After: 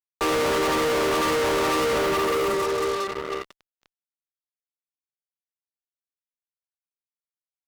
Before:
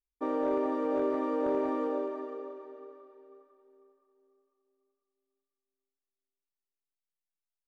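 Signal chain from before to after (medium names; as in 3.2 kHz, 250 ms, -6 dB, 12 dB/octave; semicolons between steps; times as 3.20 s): rippled Chebyshev high-pass 310 Hz, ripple 9 dB; waveshaping leveller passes 2; fuzz box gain 53 dB, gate -59 dBFS; trim -8.5 dB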